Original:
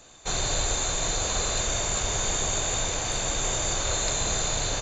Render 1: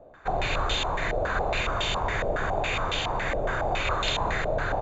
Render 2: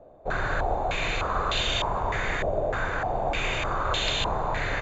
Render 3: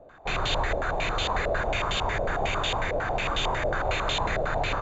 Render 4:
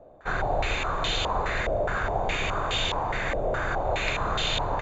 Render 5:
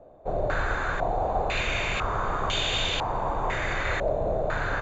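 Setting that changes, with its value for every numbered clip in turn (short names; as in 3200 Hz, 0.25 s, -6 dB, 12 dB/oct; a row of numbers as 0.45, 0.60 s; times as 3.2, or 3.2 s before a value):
stepped low-pass, rate: 7.2, 3.3, 11, 4.8, 2 Hz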